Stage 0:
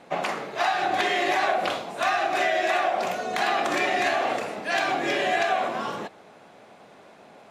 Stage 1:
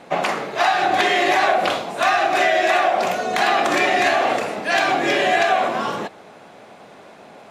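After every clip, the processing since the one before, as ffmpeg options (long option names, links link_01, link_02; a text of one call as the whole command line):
ffmpeg -i in.wav -af "acontrast=70" out.wav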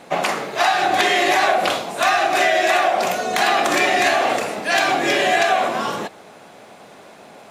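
ffmpeg -i in.wav -af "highshelf=frequency=6000:gain=9.5" out.wav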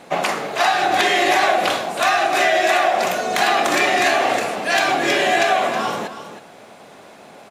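ffmpeg -i in.wav -af "aecho=1:1:319:0.266" out.wav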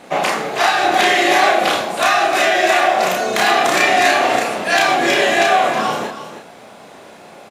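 ffmpeg -i in.wav -filter_complex "[0:a]asplit=2[link_01][link_02];[link_02]adelay=32,volume=-2dB[link_03];[link_01][link_03]amix=inputs=2:normalize=0,volume=1dB" out.wav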